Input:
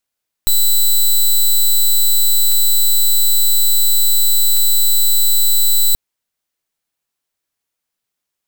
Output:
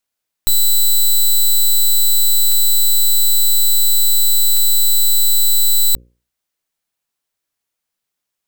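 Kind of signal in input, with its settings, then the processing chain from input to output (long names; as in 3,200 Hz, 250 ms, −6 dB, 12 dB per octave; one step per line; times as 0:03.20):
pulse wave 3,980 Hz, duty 9% −11 dBFS 5.48 s
mains-hum notches 60/120/180/240/300/360/420/480/540 Hz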